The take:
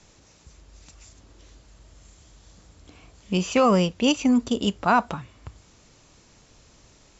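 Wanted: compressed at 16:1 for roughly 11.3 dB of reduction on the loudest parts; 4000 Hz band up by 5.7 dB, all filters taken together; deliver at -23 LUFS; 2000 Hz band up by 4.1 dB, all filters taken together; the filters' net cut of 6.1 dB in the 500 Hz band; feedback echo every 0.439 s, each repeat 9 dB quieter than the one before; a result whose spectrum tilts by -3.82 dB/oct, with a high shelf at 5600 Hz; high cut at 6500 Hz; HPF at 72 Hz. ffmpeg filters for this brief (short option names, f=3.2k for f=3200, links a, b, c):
-af "highpass=72,lowpass=6.5k,equalizer=f=500:t=o:g=-7.5,equalizer=f=2k:t=o:g=4.5,equalizer=f=4k:t=o:g=5,highshelf=f=5.6k:g=5,acompressor=threshold=-27dB:ratio=16,aecho=1:1:439|878|1317|1756:0.355|0.124|0.0435|0.0152,volume=9dB"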